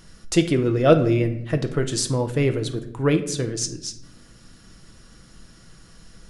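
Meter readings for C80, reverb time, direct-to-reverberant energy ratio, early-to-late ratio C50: 15.5 dB, 0.80 s, 6.0 dB, 12.0 dB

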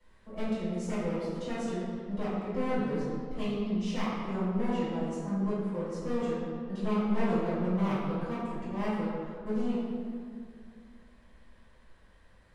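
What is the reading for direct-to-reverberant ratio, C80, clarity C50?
-13.0 dB, 0.0 dB, -3.0 dB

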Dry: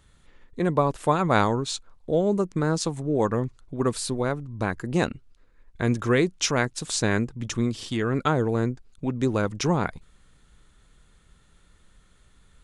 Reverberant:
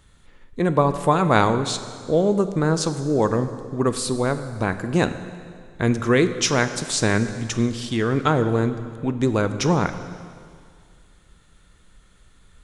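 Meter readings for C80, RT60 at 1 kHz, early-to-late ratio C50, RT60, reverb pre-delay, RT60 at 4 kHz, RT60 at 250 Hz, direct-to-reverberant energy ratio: 12.0 dB, 2.1 s, 11.0 dB, 2.1 s, 7 ms, 2.0 s, 2.0 s, 10.0 dB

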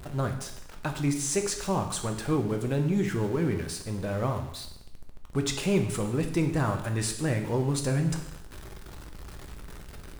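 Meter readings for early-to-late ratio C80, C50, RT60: 11.5 dB, 9.0 dB, 0.80 s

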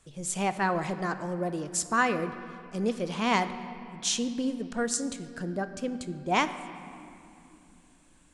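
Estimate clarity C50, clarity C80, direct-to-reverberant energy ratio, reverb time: 11.5 dB, 12.5 dB, 10.0 dB, 2.8 s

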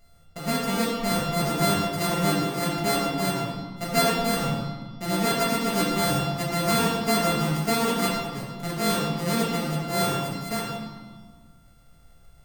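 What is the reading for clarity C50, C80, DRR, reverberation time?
1.0 dB, 3.5 dB, -5.0 dB, 1.5 s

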